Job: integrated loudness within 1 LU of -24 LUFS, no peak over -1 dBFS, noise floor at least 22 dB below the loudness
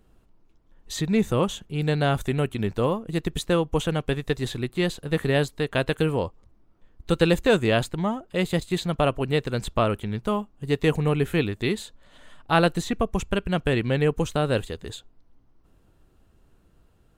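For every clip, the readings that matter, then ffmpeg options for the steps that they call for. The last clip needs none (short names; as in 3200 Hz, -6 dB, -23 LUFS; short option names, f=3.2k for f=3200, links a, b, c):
loudness -25.0 LUFS; peak -4.5 dBFS; loudness target -24.0 LUFS
-> -af "volume=1dB"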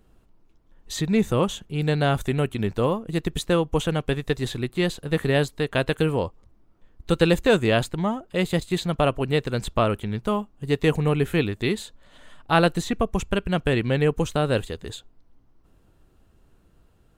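loudness -24.0 LUFS; peak -3.5 dBFS; noise floor -60 dBFS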